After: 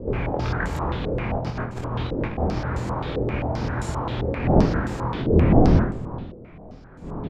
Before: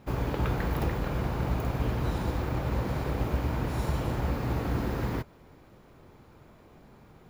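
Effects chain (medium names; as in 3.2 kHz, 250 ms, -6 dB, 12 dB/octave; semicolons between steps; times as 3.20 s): wind noise 240 Hz -27 dBFS; 1.34–2.38 s: compressor with a negative ratio -30 dBFS, ratio -0.5; early reflections 24 ms -3.5 dB, 50 ms -9 dB; step-sequenced low-pass 7.6 Hz 480–7800 Hz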